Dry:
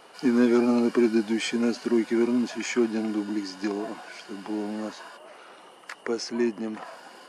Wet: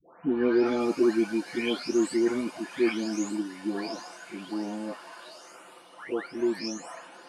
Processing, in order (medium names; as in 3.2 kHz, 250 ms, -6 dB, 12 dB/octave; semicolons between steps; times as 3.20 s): delay that grows with frequency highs late, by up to 655 ms